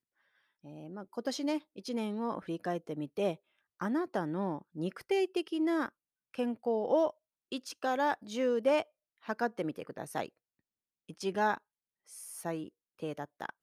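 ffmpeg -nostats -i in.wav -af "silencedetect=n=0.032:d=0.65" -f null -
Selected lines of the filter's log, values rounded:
silence_start: 0.00
silence_end: 1.18 | silence_duration: 1.18
silence_start: 10.25
silence_end: 11.22 | silence_duration: 0.97
silence_start: 11.55
silence_end: 12.46 | silence_duration: 0.91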